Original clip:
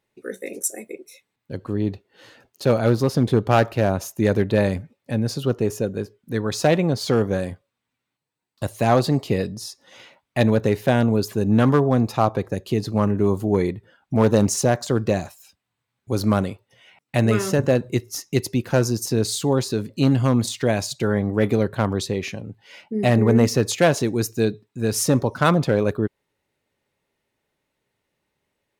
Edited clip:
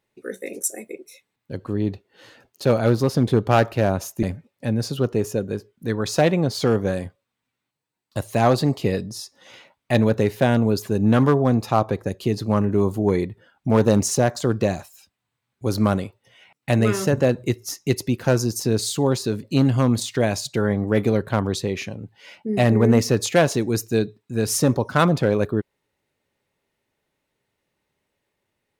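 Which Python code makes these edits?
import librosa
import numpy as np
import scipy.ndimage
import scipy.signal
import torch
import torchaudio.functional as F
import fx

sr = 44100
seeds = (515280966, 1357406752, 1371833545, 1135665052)

y = fx.edit(x, sr, fx.cut(start_s=4.23, length_s=0.46), tone=tone)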